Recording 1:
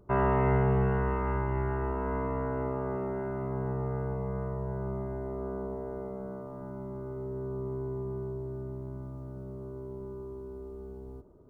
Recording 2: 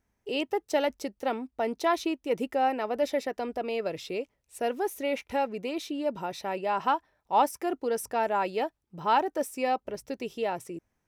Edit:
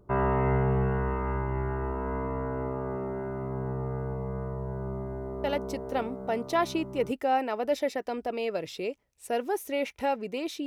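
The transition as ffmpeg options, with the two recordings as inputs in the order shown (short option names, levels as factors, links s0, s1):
-filter_complex "[0:a]apad=whole_dur=10.66,atrim=end=10.66,atrim=end=7.12,asetpts=PTS-STARTPTS[s0];[1:a]atrim=start=0.75:end=5.97,asetpts=PTS-STARTPTS[s1];[s0][s1]acrossfade=d=1.68:c1=log:c2=log"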